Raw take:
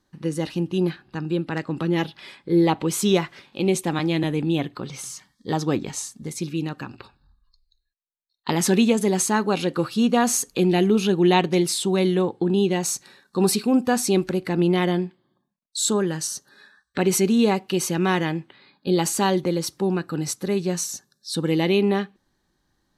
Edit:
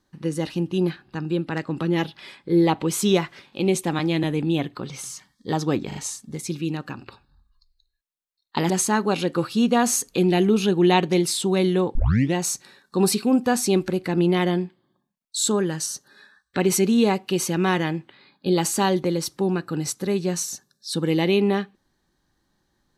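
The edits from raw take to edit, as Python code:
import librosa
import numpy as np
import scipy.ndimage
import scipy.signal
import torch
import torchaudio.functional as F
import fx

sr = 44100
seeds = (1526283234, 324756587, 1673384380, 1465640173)

y = fx.edit(x, sr, fx.stutter(start_s=5.87, slice_s=0.04, count=3),
    fx.cut(start_s=8.62, length_s=0.49),
    fx.tape_start(start_s=12.36, length_s=0.39), tone=tone)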